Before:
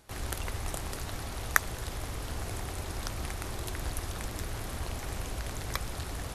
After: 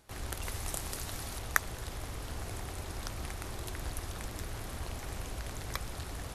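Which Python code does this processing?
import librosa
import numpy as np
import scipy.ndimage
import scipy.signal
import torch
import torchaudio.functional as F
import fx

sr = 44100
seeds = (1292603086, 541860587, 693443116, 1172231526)

y = fx.high_shelf(x, sr, hz=4200.0, db=7.5, at=(0.42, 1.39))
y = y * 10.0 ** (-3.5 / 20.0)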